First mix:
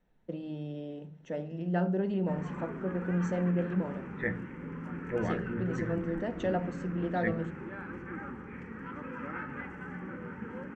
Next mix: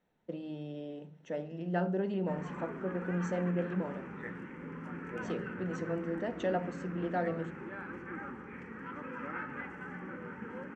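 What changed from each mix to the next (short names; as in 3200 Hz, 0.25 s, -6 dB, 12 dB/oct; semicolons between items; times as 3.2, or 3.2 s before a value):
second voice -11.0 dB; master: add low shelf 150 Hz -10 dB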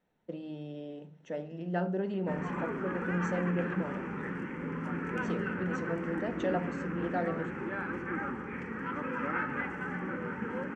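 background +7.0 dB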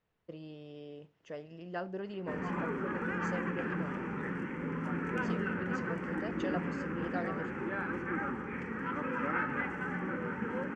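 first voice: send off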